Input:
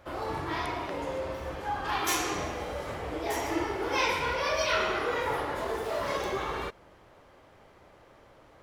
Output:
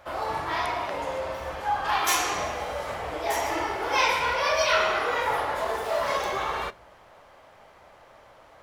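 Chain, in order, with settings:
low shelf with overshoot 490 Hz −6.5 dB, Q 1.5
on a send: convolution reverb RT60 0.40 s, pre-delay 5 ms, DRR 17 dB
on the sum: level +4.5 dB

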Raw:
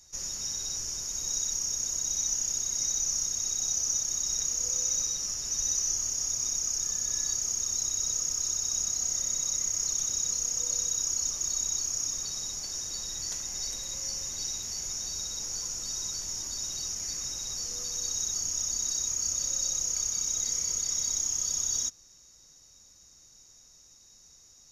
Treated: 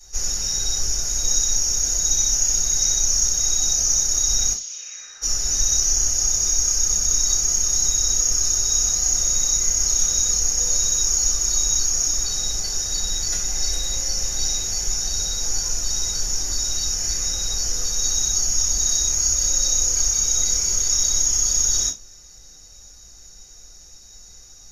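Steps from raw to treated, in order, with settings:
0:04.52–0:05.21: resonant band-pass 4,300 Hz → 1,400 Hz, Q 2.9
convolution reverb RT60 0.20 s, pre-delay 3 ms, DRR −8.5 dB

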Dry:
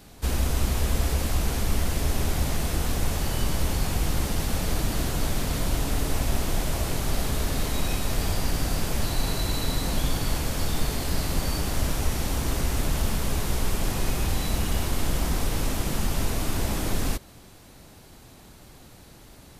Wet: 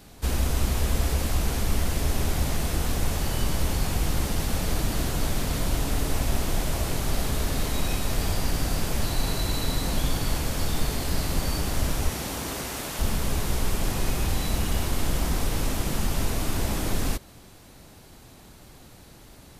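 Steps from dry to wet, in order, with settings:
0:12.08–0:12.98: high-pass filter 130 Hz → 540 Hz 6 dB per octave

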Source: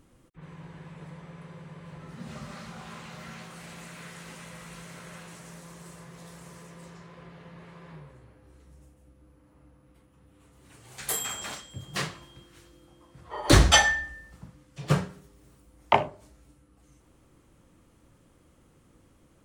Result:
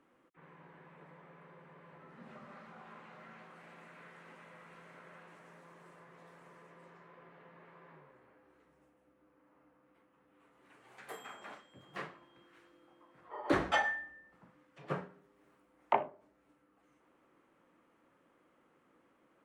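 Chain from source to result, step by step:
three-way crossover with the lows and the highs turned down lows −23 dB, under 200 Hz, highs −22 dB, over 2,300 Hz
one half of a high-frequency compander encoder only
level −8 dB

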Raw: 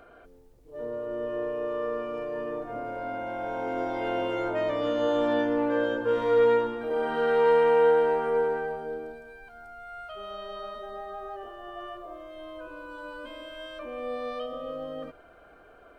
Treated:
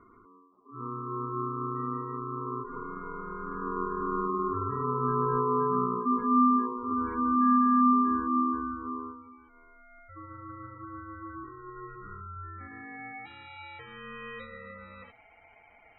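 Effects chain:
band-pass filter sweep 350 Hz → 1,700 Hz, 0:11.78–0:13.26
ring modulation 720 Hz
gate on every frequency bin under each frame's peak −20 dB strong
level +6.5 dB

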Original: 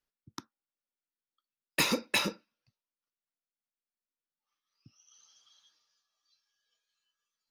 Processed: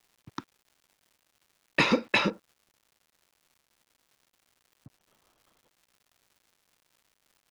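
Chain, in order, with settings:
bit reduction 10 bits
low-pass filter 3,000 Hz 12 dB per octave, from 0:02.30 1,000 Hz
surface crackle 310 per second −59 dBFS
level +6.5 dB

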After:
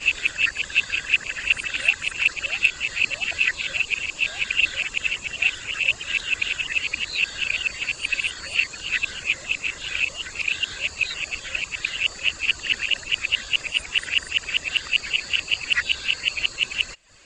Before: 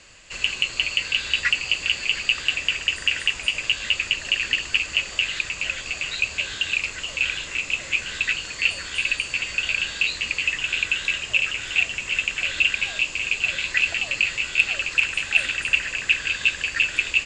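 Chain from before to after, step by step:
played backwards from end to start
reverb reduction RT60 0.55 s

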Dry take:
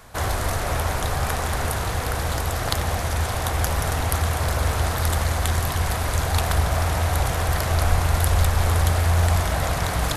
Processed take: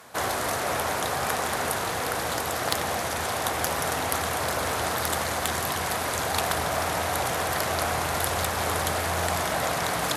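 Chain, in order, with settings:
high-pass filter 210 Hz 12 dB per octave
asymmetric clip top −13 dBFS

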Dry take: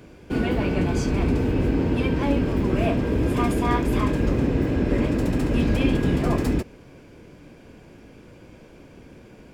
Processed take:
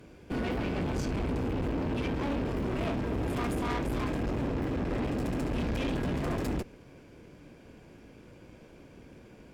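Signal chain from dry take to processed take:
tube saturation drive 26 dB, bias 0.65
level −2 dB

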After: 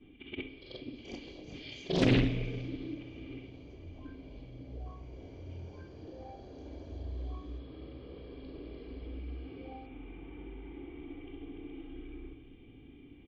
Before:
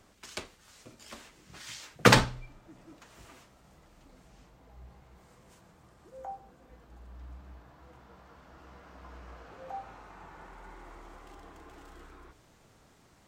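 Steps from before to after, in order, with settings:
every overlapping window played backwards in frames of 130 ms
comb filter 2.5 ms, depth 57%
in parallel at −2 dB: downward compressor, threshold −51 dBFS, peak gain reduction 32 dB
on the sum: soft clipping −23 dBFS, distortion −6 dB
formant resonators in series i
on a send at −9 dB: convolution reverb RT60 2.5 s, pre-delay 49 ms
on the sum: delay with pitch and tempo change per echo 474 ms, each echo +6 semitones, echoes 2, each echo −6 dB
highs frequency-modulated by the lows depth 0.62 ms
level +15.5 dB

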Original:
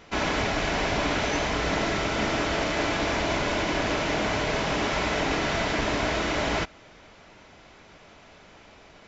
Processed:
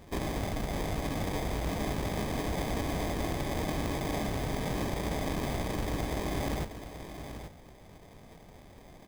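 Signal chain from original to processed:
bass and treble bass +9 dB, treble +9 dB
downward compressor, threshold −24 dBFS, peak gain reduction 7 dB
sample-rate reduction 1,400 Hz, jitter 0%
on a send: single-tap delay 832 ms −10 dB
on the sum: level −5 dB

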